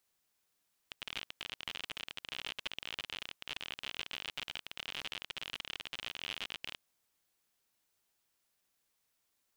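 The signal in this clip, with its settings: random clicks 54/s -24 dBFS 5.85 s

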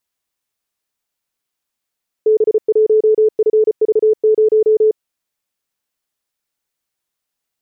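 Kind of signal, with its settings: Morse "B1FV0" 34 wpm 433 Hz -8 dBFS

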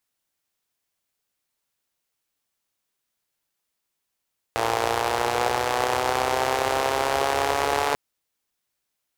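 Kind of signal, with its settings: four-cylinder engine model, changing speed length 3.39 s, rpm 3400, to 4300, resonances 84/480/740 Hz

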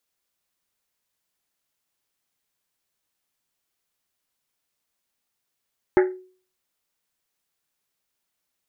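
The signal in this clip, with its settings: Risset drum, pitch 370 Hz, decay 0.44 s, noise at 1700 Hz, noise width 670 Hz, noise 15%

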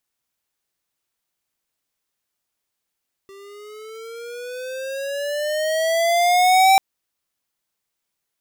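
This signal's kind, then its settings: gliding synth tone square, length 3.49 s, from 390 Hz, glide +12 st, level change +30 dB, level -12 dB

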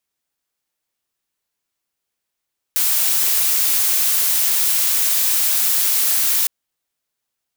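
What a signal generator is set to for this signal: noise blue, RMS -17 dBFS 3.71 s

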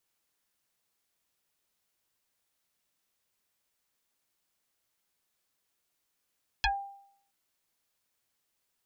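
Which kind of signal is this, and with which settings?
FM tone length 0.67 s, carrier 795 Hz, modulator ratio 1.06, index 5.7, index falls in 0.14 s exponential, decay 0.67 s, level -21.5 dB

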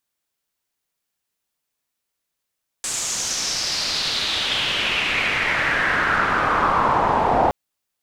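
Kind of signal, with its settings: swept filtered noise white, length 4.67 s lowpass, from 7800 Hz, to 760 Hz, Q 3.6, exponential, gain ramp +18 dB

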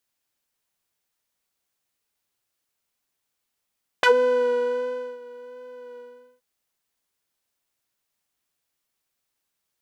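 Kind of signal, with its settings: synth patch with vibrato B4, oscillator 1 saw, interval +19 st, detune 29 cents, sub -29.5 dB, noise -27 dB, filter bandpass, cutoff 200 Hz, Q 1.7, filter envelope 4 oct, filter decay 0.09 s, filter sustain 15%, attack 2.3 ms, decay 1.15 s, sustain -23 dB, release 0.43 s, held 1.95 s, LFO 1.4 Hz, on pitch 19 cents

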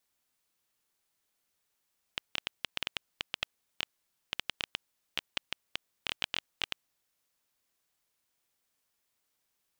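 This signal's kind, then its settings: random clicks 8.6/s -13 dBFS 4.68 s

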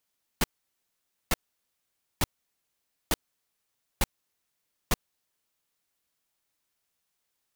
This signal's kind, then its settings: noise bursts pink, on 0.03 s, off 0.87 s, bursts 6, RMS -23 dBFS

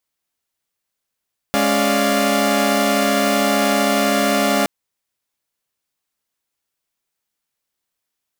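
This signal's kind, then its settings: chord G#3/C#4/D5/F5 saw, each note -18 dBFS 3.12 s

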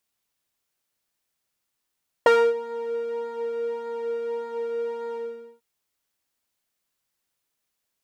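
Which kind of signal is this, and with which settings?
synth patch with pulse-width modulation A#4, sub -20 dB, filter bandpass, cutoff 140 Hz, Q 1.1, filter envelope 3 oct, filter decay 0.33 s, filter sustain 50%, attack 2.2 ms, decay 0.27 s, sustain -18 dB, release 0.46 s, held 2.89 s, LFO 1.7 Hz, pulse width 36%, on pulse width 20%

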